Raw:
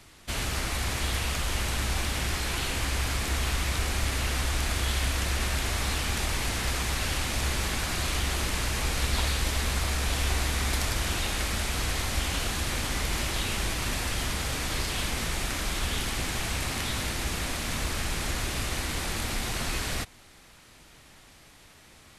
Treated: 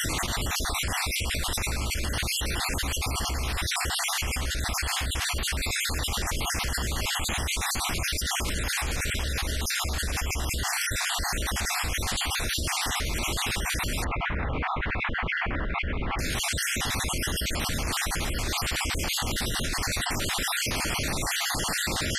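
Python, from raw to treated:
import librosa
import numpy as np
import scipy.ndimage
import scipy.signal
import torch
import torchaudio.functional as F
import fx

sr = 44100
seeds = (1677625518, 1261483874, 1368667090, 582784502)

y = fx.spec_dropout(x, sr, seeds[0], share_pct=44)
y = fx.lowpass(y, sr, hz=2200.0, slope=24, at=(14.04, 16.19))
y = fx.env_flatten(y, sr, amount_pct=100)
y = y * librosa.db_to_amplitude(-3.5)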